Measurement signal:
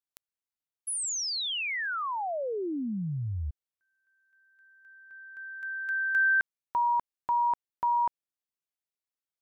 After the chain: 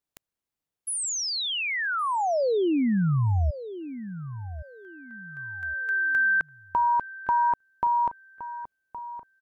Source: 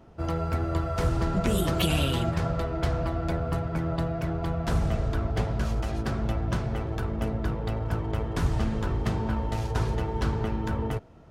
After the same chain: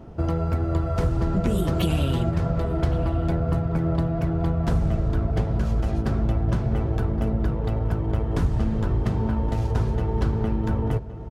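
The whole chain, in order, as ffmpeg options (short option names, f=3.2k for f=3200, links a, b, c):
-filter_complex "[0:a]tiltshelf=f=780:g=4.5,acompressor=threshold=-28dB:ratio=2.5:attack=8.7:release=501:knee=1,asplit=2[a][b];[b]adelay=1117,lowpass=f=1.9k:p=1,volume=-13dB,asplit=2[c][d];[d]adelay=1117,lowpass=f=1.9k:p=1,volume=0.29,asplit=2[e][f];[f]adelay=1117,lowpass=f=1.9k:p=1,volume=0.29[g];[a][c][e][g]amix=inputs=4:normalize=0,volume=7dB" -ar 44100 -c:a aac -b:a 192k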